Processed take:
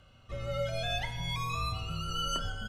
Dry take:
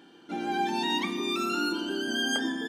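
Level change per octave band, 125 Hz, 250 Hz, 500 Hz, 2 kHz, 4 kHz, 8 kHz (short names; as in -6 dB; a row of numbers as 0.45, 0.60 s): +13.0, -16.0, -3.5, -8.5, -4.5, -4.5 dB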